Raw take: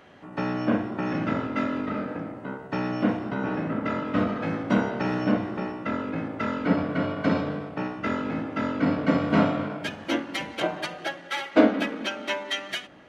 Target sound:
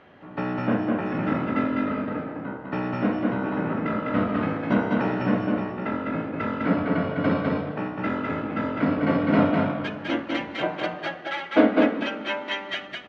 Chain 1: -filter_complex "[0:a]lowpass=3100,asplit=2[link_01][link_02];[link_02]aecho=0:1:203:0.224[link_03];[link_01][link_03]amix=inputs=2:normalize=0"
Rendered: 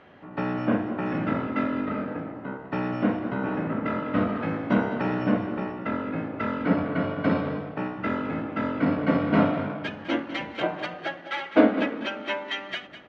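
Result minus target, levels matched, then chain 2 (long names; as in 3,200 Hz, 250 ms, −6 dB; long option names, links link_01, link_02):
echo-to-direct −10.5 dB
-filter_complex "[0:a]lowpass=3100,asplit=2[link_01][link_02];[link_02]aecho=0:1:203:0.75[link_03];[link_01][link_03]amix=inputs=2:normalize=0"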